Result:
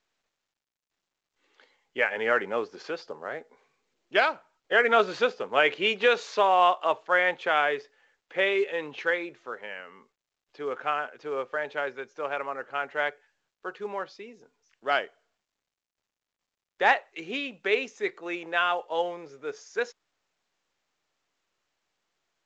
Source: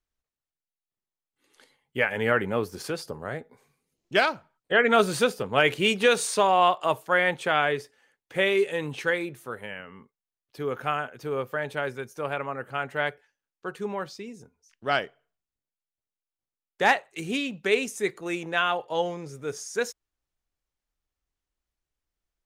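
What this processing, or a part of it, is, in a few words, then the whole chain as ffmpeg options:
telephone: -af "highpass=390,lowpass=3500" -ar 16000 -c:a pcm_mulaw

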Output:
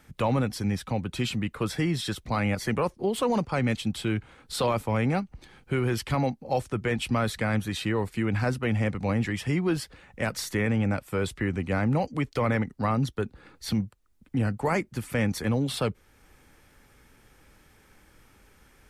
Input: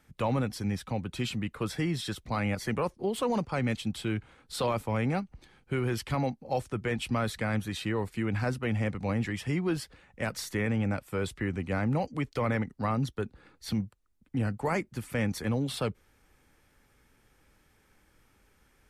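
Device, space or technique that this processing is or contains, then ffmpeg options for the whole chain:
parallel compression: -filter_complex "[0:a]asplit=2[s0][s1];[s1]acompressor=threshold=0.00398:ratio=6,volume=0.668[s2];[s0][s2]amix=inputs=2:normalize=0,volume=1.41"

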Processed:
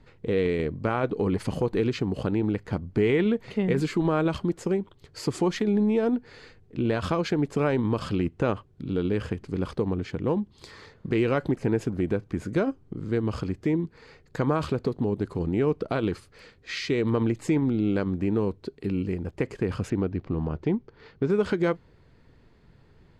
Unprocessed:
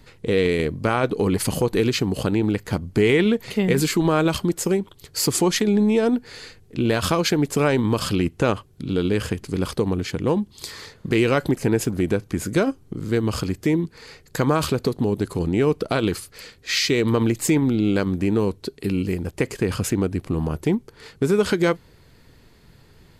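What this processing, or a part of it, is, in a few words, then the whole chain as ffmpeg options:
through cloth: -filter_complex "[0:a]lowpass=9000,highshelf=f=3700:g=-15,asettb=1/sr,asplit=3[s0][s1][s2];[s0]atrim=end=19.904[s3];[s1]atrim=start=19.9:end=21.3,asetpts=PTS-STARTPTS,afade=t=in:d=0.004:c=qsin,afade=t=out:st=1.396:d=0.004:c=qsin,lowpass=f=5700:w=0.5412,lowpass=f=5700:w=1.3066[s4];[s2]atrim=start=21.296[s5];[s3][s4]acrossfade=d=0.004:c1=hsin:c2=qsin[s6];[s6][s5]acrossfade=d=0.004:c1=qsin:c2=hsin,volume=0.596"

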